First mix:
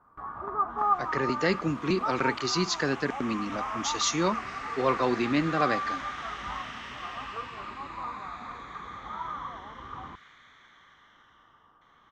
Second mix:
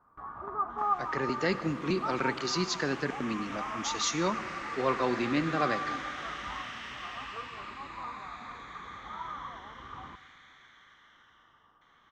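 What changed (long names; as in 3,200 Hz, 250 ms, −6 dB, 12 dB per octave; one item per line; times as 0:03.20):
speech −5.0 dB
first sound −5.0 dB
reverb: on, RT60 2.8 s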